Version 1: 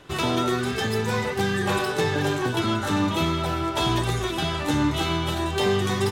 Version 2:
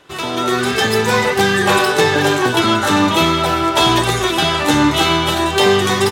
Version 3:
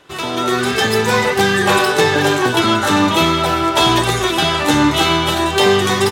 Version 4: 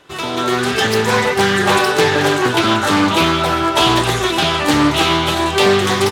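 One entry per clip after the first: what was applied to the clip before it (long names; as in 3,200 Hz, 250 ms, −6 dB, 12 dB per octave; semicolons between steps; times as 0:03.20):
low-shelf EQ 200 Hz −11.5 dB; automatic gain control gain up to 11.5 dB; level +2 dB
no processing that can be heard
highs frequency-modulated by the lows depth 0.3 ms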